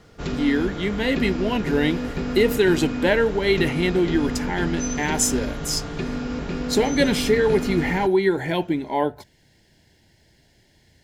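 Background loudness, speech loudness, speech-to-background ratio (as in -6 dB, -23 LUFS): -28.5 LUFS, -22.5 LUFS, 6.0 dB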